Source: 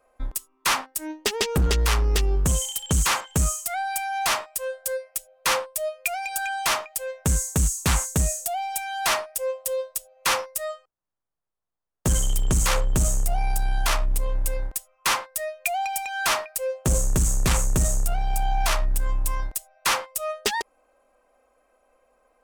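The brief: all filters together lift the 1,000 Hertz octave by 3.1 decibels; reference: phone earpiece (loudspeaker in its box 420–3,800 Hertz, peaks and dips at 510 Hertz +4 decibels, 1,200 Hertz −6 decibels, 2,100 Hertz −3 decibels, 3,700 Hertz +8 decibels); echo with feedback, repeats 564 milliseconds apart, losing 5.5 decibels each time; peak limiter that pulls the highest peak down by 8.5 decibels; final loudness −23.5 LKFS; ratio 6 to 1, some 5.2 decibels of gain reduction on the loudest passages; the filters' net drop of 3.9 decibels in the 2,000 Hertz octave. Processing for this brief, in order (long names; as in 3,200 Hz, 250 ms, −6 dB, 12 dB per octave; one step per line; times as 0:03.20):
parametric band 1,000 Hz +7.5 dB
parametric band 2,000 Hz −6 dB
downward compressor 6 to 1, threshold −23 dBFS
brickwall limiter −21 dBFS
loudspeaker in its box 420–3,800 Hz, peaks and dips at 510 Hz +4 dB, 1,200 Hz −6 dB, 2,100 Hz −3 dB, 3,700 Hz +8 dB
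repeating echo 564 ms, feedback 53%, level −5.5 dB
level +8 dB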